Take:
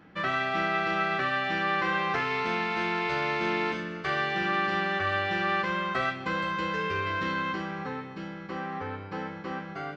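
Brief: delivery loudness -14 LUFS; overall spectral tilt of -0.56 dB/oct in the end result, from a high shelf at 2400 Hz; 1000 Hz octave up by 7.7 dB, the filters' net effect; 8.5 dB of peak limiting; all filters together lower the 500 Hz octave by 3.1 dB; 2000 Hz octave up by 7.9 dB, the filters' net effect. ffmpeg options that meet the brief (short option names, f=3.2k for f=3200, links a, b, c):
-af "equalizer=f=500:t=o:g=-7.5,equalizer=f=1k:t=o:g=8.5,equalizer=f=2k:t=o:g=4,highshelf=f=2.4k:g=7.5,volume=11.5dB,alimiter=limit=-5.5dB:level=0:latency=1"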